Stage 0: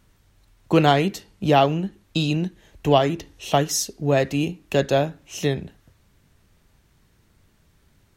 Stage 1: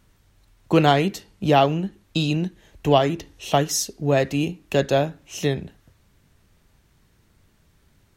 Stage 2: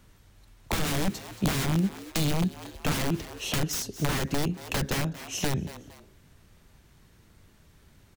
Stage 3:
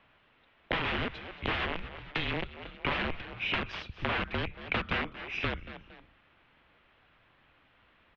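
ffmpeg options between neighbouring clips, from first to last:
-af anull
-filter_complex "[0:a]aeval=exprs='(mod(7.08*val(0)+1,2)-1)/7.08':c=same,asplit=3[a][b][c];[b]adelay=229,afreqshift=110,volume=-21dB[d];[c]adelay=458,afreqshift=220,volume=-30.6dB[e];[a][d][e]amix=inputs=3:normalize=0,acrossover=split=290[f][g];[g]acompressor=threshold=-32dB:ratio=6[h];[f][h]amix=inputs=2:normalize=0,volume=2.5dB"
-af "highpass=f=230:w=0.5412,highpass=f=230:w=1.3066,highpass=f=350:t=q:w=0.5412,highpass=f=350:t=q:w=1.307,lowpass=f=3.3k:t=q:w=0.5176,lowpass=f=3.3k:t=q:w=0.7071,lowpass=f=3.3k:t=q:w=1.932,afreqshift=-330,highshelf=f=2.3k:g=8.5"

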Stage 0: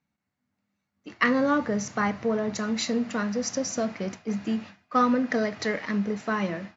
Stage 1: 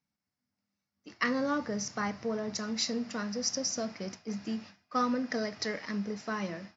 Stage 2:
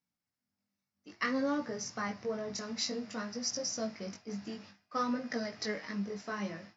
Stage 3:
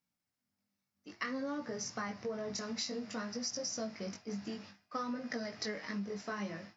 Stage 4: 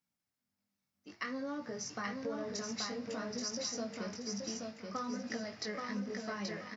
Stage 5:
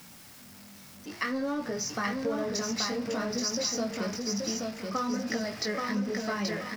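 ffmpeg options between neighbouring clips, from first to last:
-af "equalizer=f=5.2k:w=3.4:g=14,volume=-7.5dB"
-af "flanger=delay=17:depth=3.9:speed=0.57"
-af "acompressor=threshold=-36dB:ratio=6,volume=1dB"
-af "aecho=1:1:829|1658|2487|3316:0.668|0.194|0.0562|0.0163,volume=-1.5dB"
-af "aeval=exprs='val(0)+0.5*0.00299*sgn(val(0))':c=same,volume=7.5dB"

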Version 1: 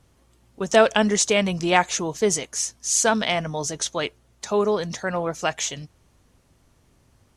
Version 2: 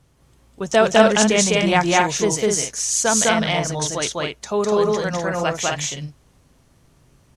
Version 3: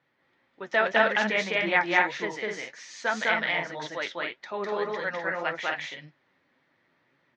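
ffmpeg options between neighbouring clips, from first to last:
-af "equalizer=f=140:w=5.4:g=6.5,aecho=1:1:204.1|250.7:1|0.631"
-af "flanger=delay=5.6:depth=6.5:regen=53:speed=1.8:shape=triangular,highpass=400,equalizer=f=430:t=q:w=4:g=-7,equalizer=f=690:t=q:w=4:g=-6,equalizer=f=1.1k:t=q:w=4:g=-5,equalizer=f=1.9k:t=q:w=4:g=8,equalizer=f=2.9k:t=q:w=4:g=-6,lowpass=f=3.5k:w=0.5412,lowpass=f=3.5k:w=1.3066"

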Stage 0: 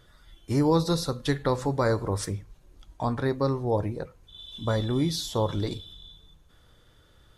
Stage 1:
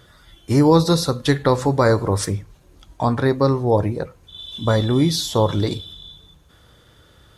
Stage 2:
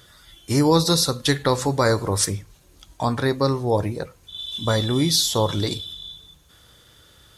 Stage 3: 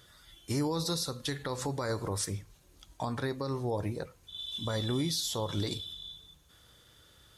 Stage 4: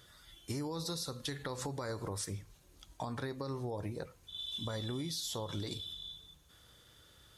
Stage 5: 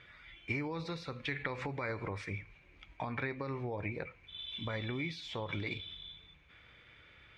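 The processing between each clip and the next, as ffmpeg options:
-af "highpass=54,volume=8.5dB"
-af "highshelf=f=2.5k:g=11,volume=-4dB"
-af "alimiter=limit=-15.5dB:level=0:latency=1:release=128,volume=-7.5dB"
-af "acompressor=threshold=-34dB:ratio=6,volume=-1.5dB"
-af "lowpass=f=2.3k:t=q:w=11"

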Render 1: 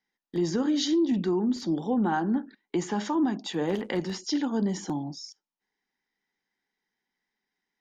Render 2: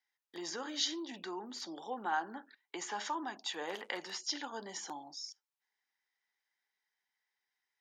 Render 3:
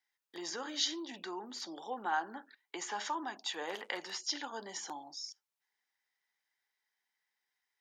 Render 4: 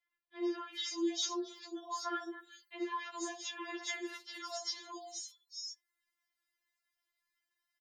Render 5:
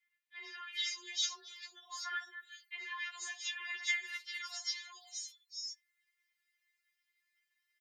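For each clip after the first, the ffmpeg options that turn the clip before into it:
-af "highpass=820,volume=-2.5dB"
-af "lowshelf=f=190:g=-7,volume=1dB"
-filter_complex "[0:a]acrossover=split=550|3500[a][b][c];[a]adelay=60[d];[c]adelay=400[e];[d][b][e]amix=inputs=3:normalize=0,afftfilt=real='re*4*eq(mod(b,16),0)':imag='im*4*eq(mod(b,16),0)':win_size=2048:overlap=0.75,volume=3dB"
-af "afreqshift=21,highpass=f=2k:t=q:w=2.6"

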